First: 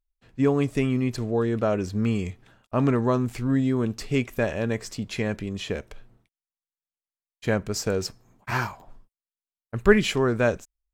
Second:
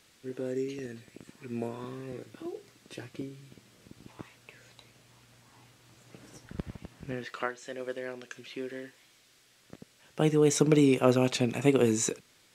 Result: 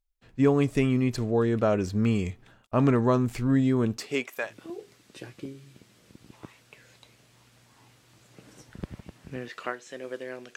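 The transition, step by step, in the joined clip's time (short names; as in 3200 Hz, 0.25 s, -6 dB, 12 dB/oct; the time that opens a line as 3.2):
first
3.96–4.54 HPF 220 Hz -> 1100 Hz
4.47 switch to second from 2.23 s, crossfade 0.14 s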